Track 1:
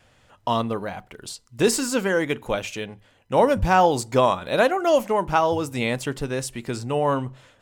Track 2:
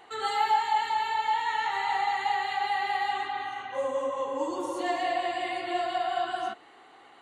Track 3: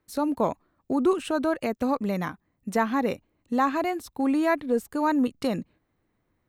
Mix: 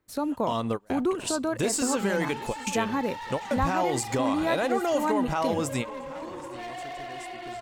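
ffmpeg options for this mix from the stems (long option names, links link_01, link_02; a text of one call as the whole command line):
ffmpeg -i stem1.wav -i stem2.wav -i stem3.wav -filter_complex "[0:a]agate=range=-33dB:threshold=-54dB:ratio=3:detection=peak,equalizer=frequency=7600:width_type=o:width=0.49:gain=7,alimiter=limit=-17dB:level=0:latency=1:release=111,volume=1.5dB,asplit=2[link_01][link_02];[link_02]volume=-21dB[link_03];[1:a]acrossover=split=4100[link_04][link_05];[link_05]acompressor=threshold=-57dB:ratio=4:attack=1:release=60[link_06];[link_04][link_06]amix=inputs=2:normalize=0,asoftclip=type=hard:threshold=-31.5dB,adelay=1750,volume=-4dB[link_07];[2:a]volume=-1dB,asplit=3[link_08][link_09][link_10];[link_09]volume=-21.5dB[link_11];[link_10]apad=whole_len=335908[link_12];[link_01][link_12]sidechaingate=range=-33dB:threshold=-58dB:ratio=16:detection=peak[link_13];[link_03][link_11]amix=inputs=2:normalize=0,aecho=0:1:778:1[link_14];[link_13][link_07][link_08][link_14]amix=inputs=4:normalize=0,acompressor=threshold=-27dB:ratio=1.5" out.wav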